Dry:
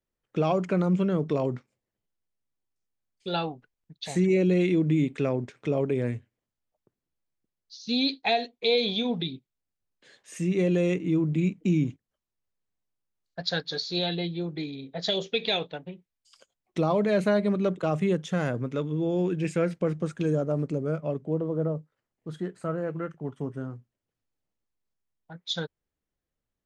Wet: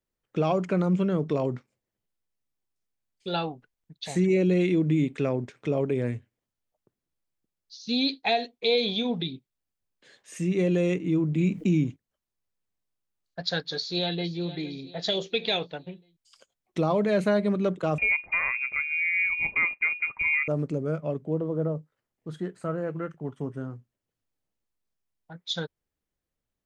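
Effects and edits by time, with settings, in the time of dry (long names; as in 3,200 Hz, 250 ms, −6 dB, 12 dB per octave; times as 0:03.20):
0:11.40–0:11.81: envelope flattener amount 50%
0:13.74–0:14.32: delay throw 460 ms, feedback 45%, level −14.5 dB
0:17.98–0:20.48: voice inversion scrambler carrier 2,600 Hz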